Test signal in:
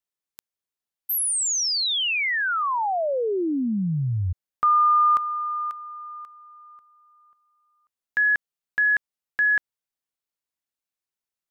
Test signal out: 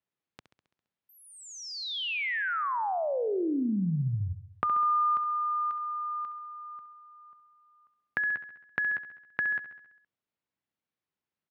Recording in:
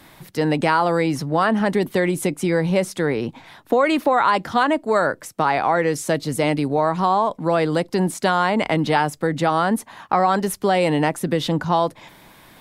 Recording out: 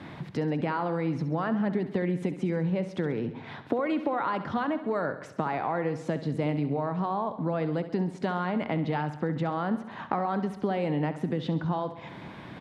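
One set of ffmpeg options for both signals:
-filter_complex "[0:a]lowshelf=f=290:g=11,acompressor=threshold=-36dB:ratio=2.5:attack=12:release=292:detection=peak,highpass=110,lowpass=3.1k,asplit=2[a][b];[b]aecho=0:1:67|134|201|268|335|402|469:0.237|0.142|0.0854|0.0512|0.0307|0.0184|0.0111[c];[a][c]amix=inputs=2:normalize=0,volume=2dB"

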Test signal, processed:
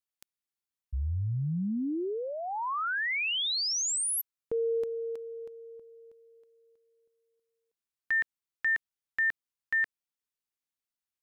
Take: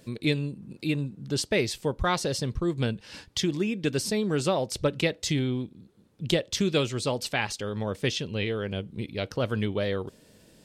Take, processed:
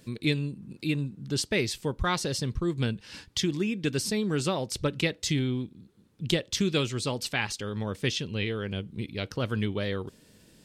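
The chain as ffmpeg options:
-af "equalizer=f=620:w=1.4:g=-6"

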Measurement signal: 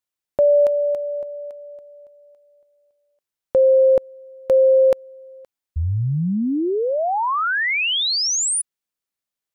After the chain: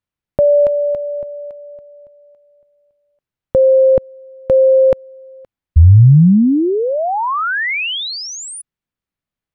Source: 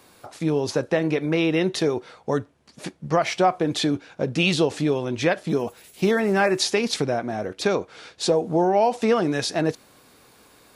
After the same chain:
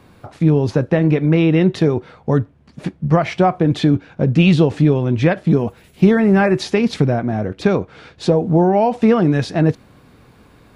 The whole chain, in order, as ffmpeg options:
-af "bass=f=250:g=13,treble=f=4k:g=-12,volume=3dB"

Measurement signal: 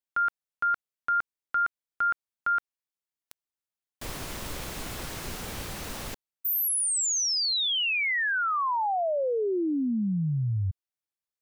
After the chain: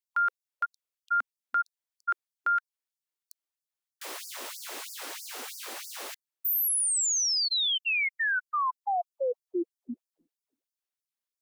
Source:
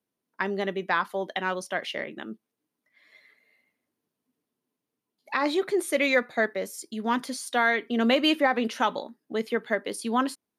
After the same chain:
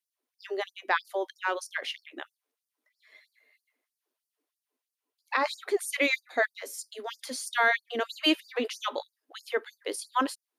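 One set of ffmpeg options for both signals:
-af "afftfilt=real='re*gte(b*sr/1024,230*pow(4600/230,0.5+0.5*sin(2*PI*3.1*pts/sr)))':imag='im*gte(b*sr/1024,230*pow(4600/230,0.5+0.5*sin(2*PI*3.1*pts/sr)))':win_size=1024:overlap=0.75"

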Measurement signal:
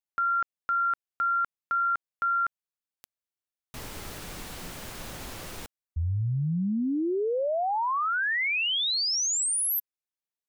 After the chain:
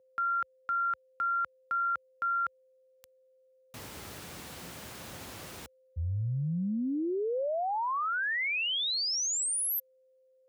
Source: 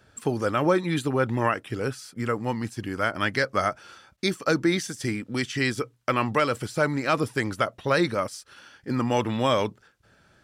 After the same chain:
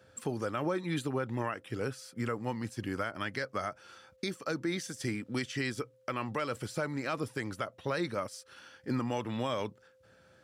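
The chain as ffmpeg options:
-af "alimiter=limit=-19dB:level=0:latency=1:release=378,aeval=exprs='val(0)+0.00112*sin(2*PI*520*n/s)':c=same,highpass=f=65:w=0.5412,highpass=f=65:w=1.3066,volume=-4dB"

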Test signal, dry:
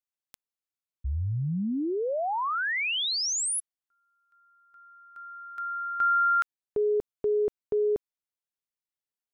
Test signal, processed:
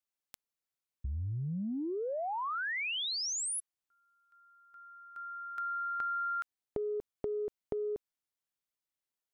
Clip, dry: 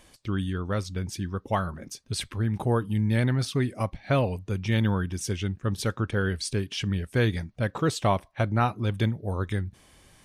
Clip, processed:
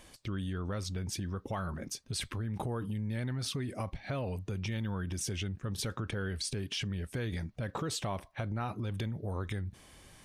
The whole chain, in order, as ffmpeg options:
-af "acompressor=threshold=-36dB:ratio=6:attack=11:release=30:knee=1:detection=peak"

